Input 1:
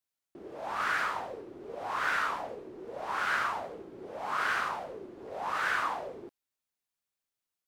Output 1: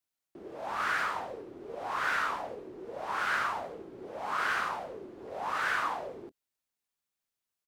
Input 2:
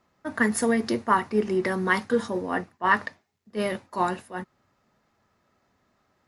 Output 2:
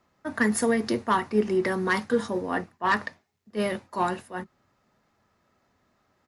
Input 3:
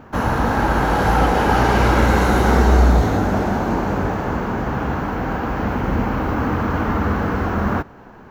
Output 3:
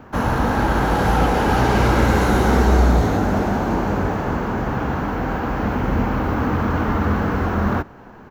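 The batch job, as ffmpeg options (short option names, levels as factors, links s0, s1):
-filter_complex "[0:a]acrossover=split=470|5000[s0][s1][s2];[s0]asplit=2[s3][s4];[s4]adelay=24,volume=0.224[s5];[s3][s5]amix=inputs=2:normalize=0[s6];[s1]asoftclip=type=tanh:threshold=0.158[s7];[s6][s7][s2]amix=inputs=3:normalize=0"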